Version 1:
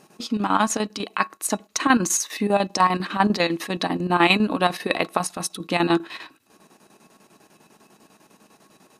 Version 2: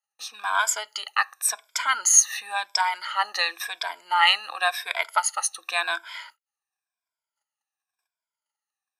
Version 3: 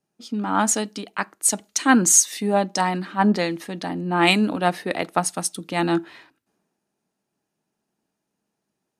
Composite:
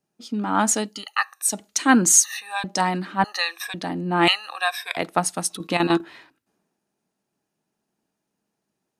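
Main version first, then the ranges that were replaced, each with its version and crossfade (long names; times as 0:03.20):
3
0:00.96–0:01.49: punch in from 2, crossfade 0.24 s
0:02.24–0:02.64: punch in from 2
0:03.24–0:03.74: punch in from 2
0:04.28–0:04.97: punch in from 2
0:05.50–0:06.01: punch in from 1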